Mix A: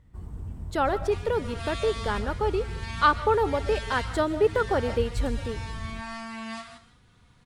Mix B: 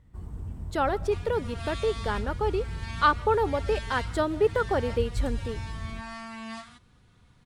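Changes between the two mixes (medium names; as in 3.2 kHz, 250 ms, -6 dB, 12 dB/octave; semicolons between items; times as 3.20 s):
speech: send -9.0 dB; second sound: send off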